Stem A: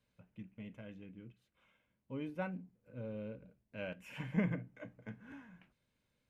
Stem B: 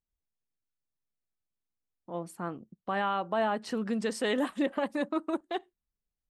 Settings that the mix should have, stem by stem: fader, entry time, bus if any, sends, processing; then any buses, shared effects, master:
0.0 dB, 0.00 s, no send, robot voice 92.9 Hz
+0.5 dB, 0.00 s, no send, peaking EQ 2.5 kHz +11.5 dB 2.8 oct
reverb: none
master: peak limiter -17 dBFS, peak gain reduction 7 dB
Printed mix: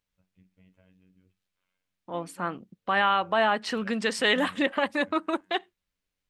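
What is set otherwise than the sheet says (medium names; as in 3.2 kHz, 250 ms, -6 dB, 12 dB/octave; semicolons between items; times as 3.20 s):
stem A 0.0 dB -> -8.5 dB; master: missing peak limiter -17 dBFS, peak gain reduction 7 dB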